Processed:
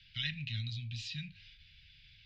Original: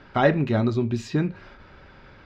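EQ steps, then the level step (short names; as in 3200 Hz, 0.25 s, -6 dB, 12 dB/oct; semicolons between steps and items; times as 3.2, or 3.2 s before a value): inverse Chebyshev band-stop 330–1200 Hz, stop band 60 dB; three-band isolator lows -21 dB, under 360 Hz, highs -21 dB, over 4700 Hz; high shelf 4100 Hz -9 dB; +9.5 dB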